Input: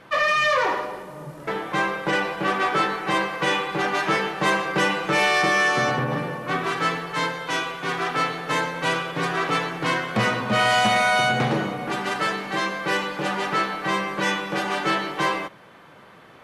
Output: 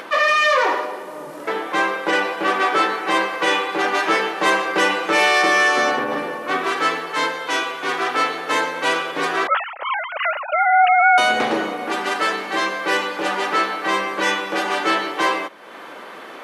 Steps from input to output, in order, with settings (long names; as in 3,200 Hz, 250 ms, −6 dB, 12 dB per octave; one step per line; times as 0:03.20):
0:09.47–0:11.18: three sine waves on the formant tracks
high-pass filter 260 Hz 24 dB per octave
upward compression, threshold −31 dBFS
level +4 dB